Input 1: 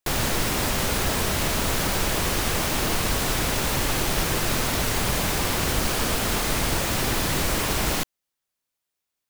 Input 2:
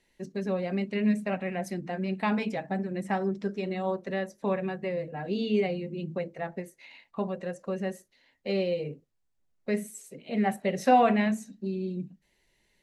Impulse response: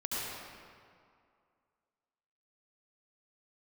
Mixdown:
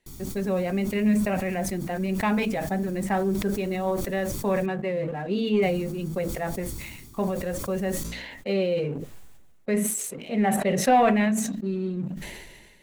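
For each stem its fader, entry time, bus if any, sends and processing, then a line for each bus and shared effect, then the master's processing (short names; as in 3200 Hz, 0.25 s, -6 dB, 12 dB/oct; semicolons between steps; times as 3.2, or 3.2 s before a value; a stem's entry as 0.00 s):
-11.0 dB, 0.00 s, muted 4.66–5.62, no send, band shelf 1300 Hz -15.5 dB 2.9 oct; comb 0.9 ms, depth 48%; flange 0.69 Hz, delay 9.4 ms, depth 10 ms, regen +86%; auto duck -10 dB, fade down 0.50 s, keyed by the second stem
-0.5 dB, 0.00 s, no send, sample leveller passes 1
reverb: off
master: bell 5000 Hz -5 dB 0.64 oct; sustainer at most 37 dB/s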